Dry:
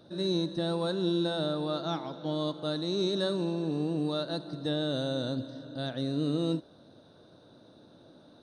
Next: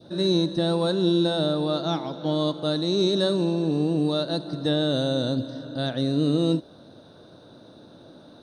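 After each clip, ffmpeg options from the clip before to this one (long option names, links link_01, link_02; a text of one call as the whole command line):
ffmpeg -i in.wav -af "adynamicequalizer=threshold=0.00501:dfrequency=1400:dqfactor=1:tfrequency=1400:tqfactor=1:attack=5:release=100:ratio=0.375:range=2:mode=cutabove:tftype=bell,volume=7.5dB" out.wav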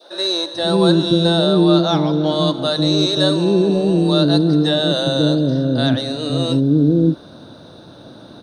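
ffmpeg -i in.wav -filter_complex "[0:a]acontrast=68,acrossover=split=480[link_01][link_02];[link_01]adelay=540[link_03];[link_03][link_02]amix=inputs=2:normalize=0,volume=3.5dB" out.wav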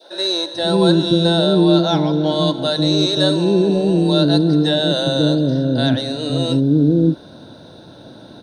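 ffmpeg -i in.wav -af "asuperstop=centerf=1200:order=4:qfactor=7" out.wav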